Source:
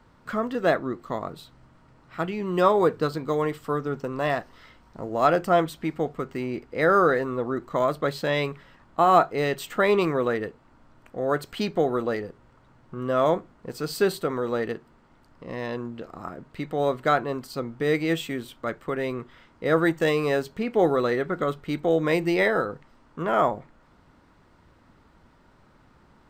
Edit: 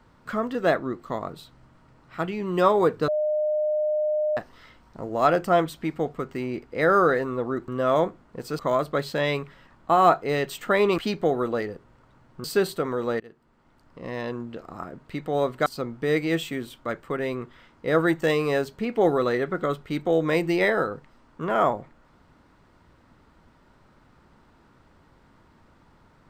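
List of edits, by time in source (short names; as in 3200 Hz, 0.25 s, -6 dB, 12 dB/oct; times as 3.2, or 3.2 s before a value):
3.08–4.37 bleep 608 Hz -21 dBFS
10.07–11.52 cut
12.98–13.89 move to 7.68
14.65–15.68 fade in equal-power, from -23 dB
17.11–17.44 cut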